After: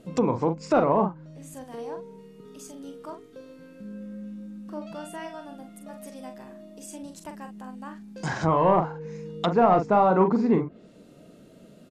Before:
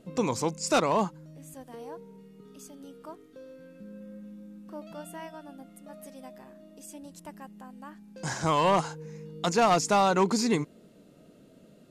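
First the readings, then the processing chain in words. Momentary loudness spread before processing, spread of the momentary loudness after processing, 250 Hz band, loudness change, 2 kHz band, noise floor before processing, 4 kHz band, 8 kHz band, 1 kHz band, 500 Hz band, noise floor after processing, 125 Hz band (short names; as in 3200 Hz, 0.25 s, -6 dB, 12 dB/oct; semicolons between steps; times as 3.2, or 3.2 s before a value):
23 LU, 22 LU, +4.5 dB, +2.5 dB, -1.5 dB, -56 dBFS, -7.5 dB, -10.0 dB, +3.0 dB, +4.5 dB, -51 dBFS, +4.5 dB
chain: doubler 43 ms -7 dB; treble ducked by the level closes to 1100 Hz, closed at -24.5 dBFS; gain +4 dB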